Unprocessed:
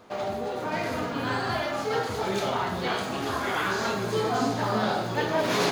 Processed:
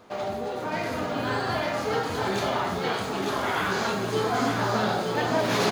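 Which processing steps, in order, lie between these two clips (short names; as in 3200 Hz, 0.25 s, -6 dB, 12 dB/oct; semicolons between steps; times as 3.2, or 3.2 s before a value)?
2.79–3.39 Chebyshev high-pass 150 Hz; on a send: echo 0.903 s -4.5 dB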